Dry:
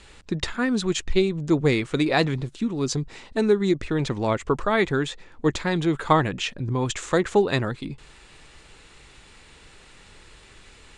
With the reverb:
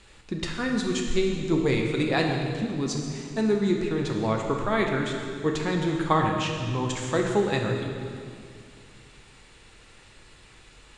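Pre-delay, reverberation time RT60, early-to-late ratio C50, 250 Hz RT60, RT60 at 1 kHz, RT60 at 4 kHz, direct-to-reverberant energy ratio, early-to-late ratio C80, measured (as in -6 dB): 6 ms, 2.2 s, 3.0 dB, 2.7 s, 2.1 s, 2.1 s, 1.0 dB, 4.5 dB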